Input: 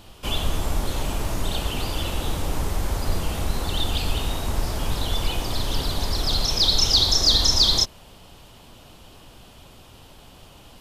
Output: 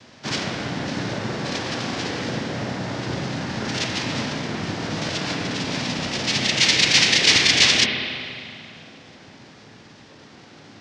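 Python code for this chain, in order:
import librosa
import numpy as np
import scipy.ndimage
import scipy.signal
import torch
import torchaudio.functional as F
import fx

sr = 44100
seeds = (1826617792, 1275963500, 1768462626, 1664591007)

y = fx.noise_vocoder(x, sr, seeds[0], bands=4)
y = fx.formant_shift(y, sr, semitones=-6)
y = fx.rev_spring(y, sr, rt60_s=2.4, pass_ms=(32, 46), chirp_ms=70, drr_db=2.0)
y = y * 10.0 ** (2.0 / 20.0)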